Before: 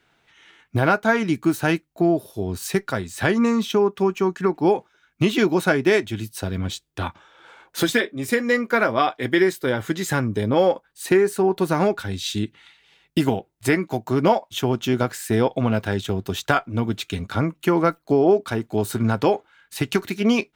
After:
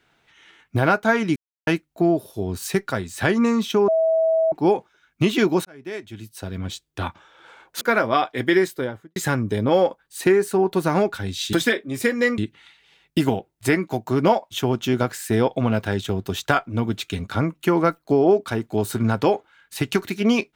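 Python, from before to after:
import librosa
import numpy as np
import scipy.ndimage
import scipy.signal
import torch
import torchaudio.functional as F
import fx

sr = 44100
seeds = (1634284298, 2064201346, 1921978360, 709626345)

y = fx.studio_fade_out(x, sr, start_s=9.48, length_s=0.53)
y = fx.edit(y, sr, fx.silence(start_s=1.36, length_s=0.31),
    fx.bleep(start_s=3.88, length_s=0.64, hz=648.0, db=-15.5),
    fx.fade_in_span(start_s=5.65, length_s=1.42),
    fx.move(start_s=7.81, length_s=0.85, to_s=12.38), tone=tone)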